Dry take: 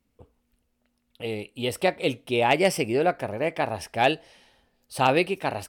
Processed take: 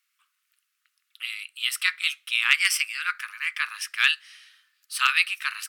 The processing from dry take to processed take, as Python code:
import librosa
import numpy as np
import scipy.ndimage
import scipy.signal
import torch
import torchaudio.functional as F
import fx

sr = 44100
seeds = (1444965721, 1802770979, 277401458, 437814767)

y = scipy.signal.sosfilt(scipy.signal.butter(12, 1200.0, 'highpass', fs=sr, output='sos'), x)
y = y * librosa.db_to_amplitude(7.0)